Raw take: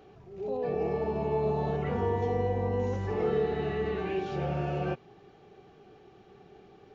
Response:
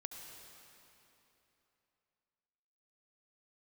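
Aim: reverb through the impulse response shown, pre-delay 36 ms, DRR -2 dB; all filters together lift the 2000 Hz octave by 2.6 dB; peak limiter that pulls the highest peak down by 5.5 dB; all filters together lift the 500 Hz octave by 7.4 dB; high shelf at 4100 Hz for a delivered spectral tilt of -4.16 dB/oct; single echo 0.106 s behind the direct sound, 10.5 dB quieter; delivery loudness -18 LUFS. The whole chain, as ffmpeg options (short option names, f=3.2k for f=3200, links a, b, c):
-filter_complex "[0:a]equalizer=f=500:t=o:g=8.5,equalizer=f=2k:t=o:g=4,highshelf=f=4.1k:g=-7,alimiter=limit=-17.5dB:level=0:latency=1,aecho=1:1:106:0.299,asplit=2[a][b];[1:a]atrim=start_sample=2205,adelay=36[c];[b][c]afir=irnorm=-1:irlink=0,volume=5dB[d];[a][d]amix=inputs=2:normalize=0,volume=4.5dB"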